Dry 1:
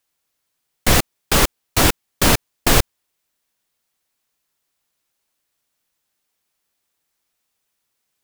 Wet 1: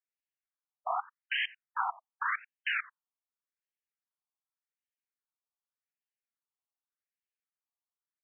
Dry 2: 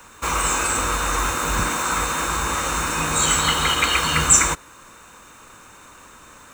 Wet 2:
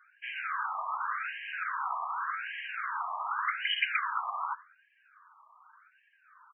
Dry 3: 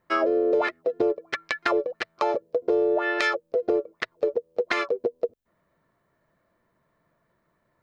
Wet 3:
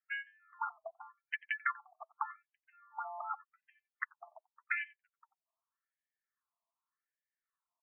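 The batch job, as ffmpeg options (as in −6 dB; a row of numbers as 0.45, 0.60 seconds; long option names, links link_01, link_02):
-filter_complex "[0:a]afftdn=noise_reduction=12:noise_floor=-45,asplit=2[link_01][link_02];[link_02]adelay=90,highpass=300,lowpass=3400,asoftclip=type=hard:threshold=-9dB,volume=-21dB[link_03];[link_01][link_03]amix=inputs=2:normalize=0,afftfilt=real='re*between(b*sr/1024,880*pow(2300/880,0.5+0.5*sin(2*PI*0.86*pts/sr))/1.41,880*pow(2300/880,0.5+0.5*sin(2*PI*0.86*pts/sr))*1.41)':imag='im*between(b*sr/1024,880*pow(2300/880,0.5+0.5*sin(2*PI*0.86*pts/sr))/1.41,880*pow(2300/880,0.5+0.5*sin(2*PI*0.86*pts/sr))*1.41)':win_size=1024:overlap=0.75,volume=-7dB"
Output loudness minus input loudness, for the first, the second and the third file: −16.5, −14.0, −15.0 LU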